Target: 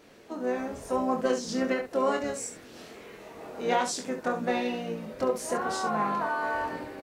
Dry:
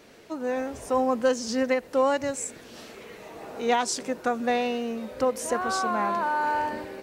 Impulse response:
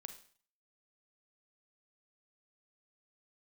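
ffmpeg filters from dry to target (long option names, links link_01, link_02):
-filter_complex "[0:a]asplit=3[link_01][link_02][link_03];[link_02]asetrate=33038,aresample=44100,atempo=1.33484,volume=-9dB[link_04];[link_03]asetrate=55563,aresample=44100,atempo=0.793701,volume=-16dB[link_05];[link_01][link_04][link_05]amix=inputs=3:normalize=0,aecho=1:1:24|69:0.562|0.355,asplit=2[link_06][link_07];[1:a]atrim=start_sample=2205,lowpass=2700[link_08];[link_07][link_08]afir=irnorm=-1:irlink=0,volume=-10dB[link_09];[link_06][link_09]amix=inputs=2:normalize=0,volume=-5.5dB"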